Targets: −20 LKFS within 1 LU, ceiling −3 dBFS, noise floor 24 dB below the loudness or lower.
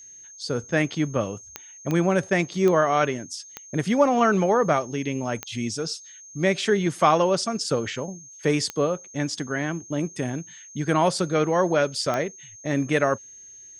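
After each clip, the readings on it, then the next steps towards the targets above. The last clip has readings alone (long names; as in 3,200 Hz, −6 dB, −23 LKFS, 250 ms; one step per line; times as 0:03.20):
number of clicks 7; interfering tone 6,400 Hz; level of the tone −43 dBFS; integrated loudness −24.0 LKFS; sample peak −5.0 dBFS; target loudness −20.0 LKFS
→ click removal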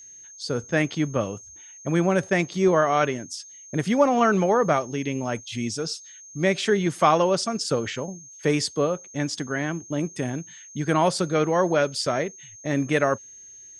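number of clicks 0; interfering tone 6,400 Hz; level of the tone −43 dBFS
→ notch filter 6,400 Hz, Q 30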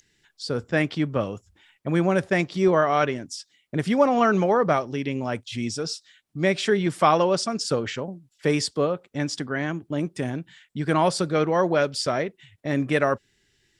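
interfering tone none found; integrated loudness −24.0 LKFS; sample peak −5.0 dBFS; target loudness −20.0 LKFS
→ level +4 dB
brickwall limiter −3 dBFS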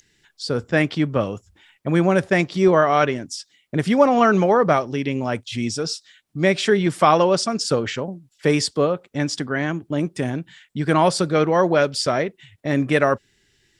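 integrated loudness −20.0 LKFS; sample peak −3.0 dBFS; background noise floor −64 dBFS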